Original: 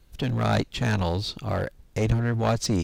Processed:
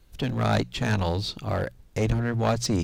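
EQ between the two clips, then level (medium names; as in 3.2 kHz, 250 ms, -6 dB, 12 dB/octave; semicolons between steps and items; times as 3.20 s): hum notches 60/120/180 Hz; 0.0 dB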